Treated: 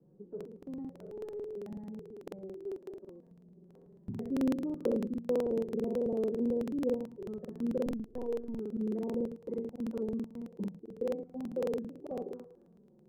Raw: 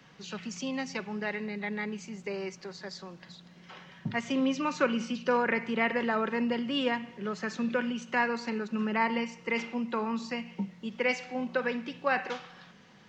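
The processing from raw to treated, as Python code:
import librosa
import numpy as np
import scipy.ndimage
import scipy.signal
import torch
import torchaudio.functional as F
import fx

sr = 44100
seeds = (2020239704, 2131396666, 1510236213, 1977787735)

y = fx.spec_trails(x, sr, decay_s=0.47)
y = fx.clip_hard(y, sr, threshold_db=-33.5, at=(0.98, 1.55))
y = fx.highpass(y, sr, hz=130.0, slope=6, at=(2.62, 3.27))
y = fx.env_flanger(y, sr, rest_ms=6.3, full_db=-24.5)
y = fx.lpc_vocoder(y, sr, seeds[0], excitation='pitch_kept', order=16, at=(7.86, 8.54))
y = fx.ladder_lowpass(y, sr, hz=470.0, resonance_pct=55)
y = fx.buffer_crackle(y, sr, first_s=0.36, period_s=0.11, block=2048, kind='repeat')
y = y * 10.0 ** (5.0 / 20.0)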